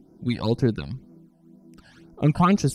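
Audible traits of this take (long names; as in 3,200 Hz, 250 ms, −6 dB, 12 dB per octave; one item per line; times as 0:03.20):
phaser sweep stages 12, 2 Hz, lowest notch 370–3,300 Hz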